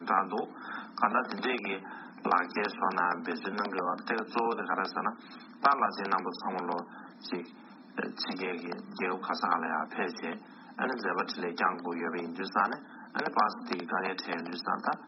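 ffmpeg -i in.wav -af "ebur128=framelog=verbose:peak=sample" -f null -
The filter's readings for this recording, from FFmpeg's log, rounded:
Integrated loudness:
  I:         -32.3 LUFS
  Threshold: -42.6 LUFS
Loudness range:
  LRA:         3.5 LU
  Threshold: -52.6 LUFS
  LRA low:   -34.9 LUFS
  LRA high:  -31.3 LUFS
Sample peak:
  Peak:       -9.1 dBFS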